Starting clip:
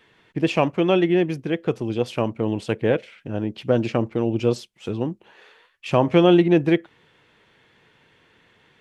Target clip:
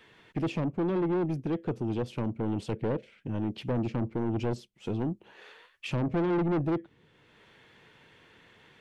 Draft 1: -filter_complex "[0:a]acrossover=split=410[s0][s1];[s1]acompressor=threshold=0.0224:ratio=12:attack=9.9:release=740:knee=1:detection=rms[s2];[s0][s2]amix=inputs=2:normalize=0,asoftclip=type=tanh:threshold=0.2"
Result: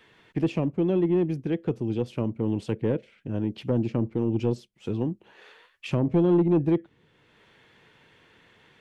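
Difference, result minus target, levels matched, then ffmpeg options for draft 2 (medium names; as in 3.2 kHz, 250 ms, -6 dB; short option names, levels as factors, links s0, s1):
saturation: distortion -10 dB
-filter_complex "[0:a]acrossover=split=410[s0][s1];[s1]acompressor=threshold=0.0224:ratio=12:attack=9.9:release=740:knee=1:detection=rms[s2];[s0][s2]amix=inputs=2:normalize=0,asoftclip=type=tanh:threshold=0.0596"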